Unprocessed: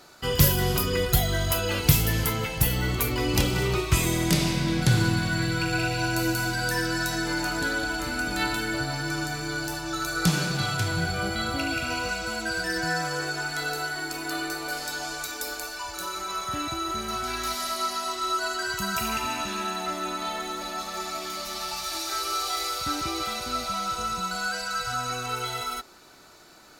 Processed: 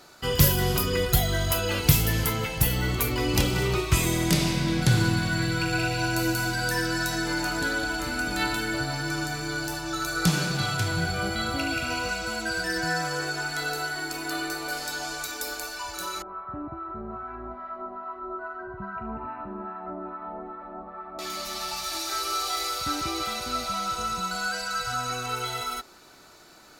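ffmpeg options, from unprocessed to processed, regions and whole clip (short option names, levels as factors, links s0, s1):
-filter_complex "[0:a]asettb=1/sr,asplit=3[s0][s1][s2];[s0]atrim=end=16.224[s3];[s1]atrim=start=16.22:end=21.19,asetpts=PTS-STARTPTS,afade=t=in:d=0.004:c=qsin,afade=t=out:st=4.966:d=0.004:c=qsin,lowpass=f=1300:w=0.5412,lowpass=f=1300:w=1.3066,acrossover=split=880[s4][s5];[s4]aeval=exprs='val(0)*(1-0.7/2+0.7/2*cos(2*PI*2.4*n/s))':c=same[s6];[s5]aeval=exprs='val(0)*(1-0.7/2-0.7/2*cos(2*PI*2.4*n/s))':c=same[s7];[s6][s7]amix=inputs=2:normalize=0[s8];[s2]atrim=start=21.186[s9];[s3][s8]acrossfade=d=0.004:c1=hsin:c2=qsin[s10];[s10][s9]acrossfade=d=0.004:c1=qsin:c2=hsin"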